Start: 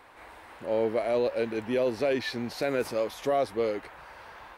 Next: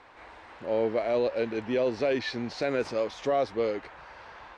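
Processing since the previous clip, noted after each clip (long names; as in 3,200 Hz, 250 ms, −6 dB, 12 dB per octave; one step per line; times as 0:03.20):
low-pass filter 6,700 Hz 24 dB per octave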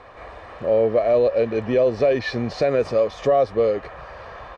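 tilt shelving filter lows +5 dB, about 1,200 Hz
comb filter 1.7 ms, depth 50%
downward compressor 1.5 to 1, threshold −29 dBFS, peak gain reduction 5 dB
level +7.5 dB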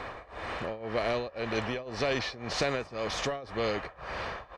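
amplitude tremolo 1.9 Hz, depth 96%
every bin compressed towards the loudest bin 2 to 1
level −7.5 dB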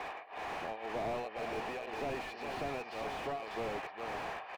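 loudspeaker in its box 420–4,300 Hz, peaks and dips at 540 Hz −7 dB, 780 Hz +7 dB, 1,300 Hz −5 dB, 2,600 Hz +7 dB, 3,900 Hz −4 dB
single-tap delay 409 ms −8.5 dB
slew-rate limiting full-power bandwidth 16 Hz
level −1 dB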